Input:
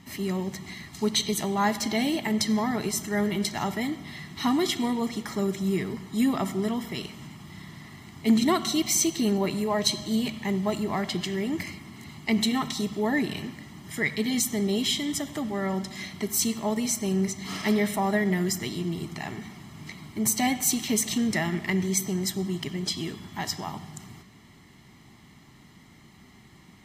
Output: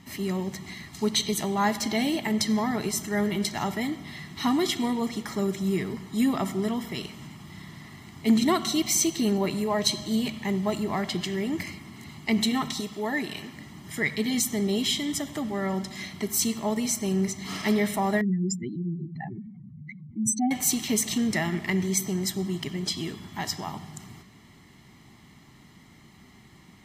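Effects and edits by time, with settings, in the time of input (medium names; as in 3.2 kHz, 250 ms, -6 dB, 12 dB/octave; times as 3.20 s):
12.80–13.54 s: bass shelf 360 Hz -8.5 dB
18.21–20.51 s: spectral contrast enhancement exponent 3.3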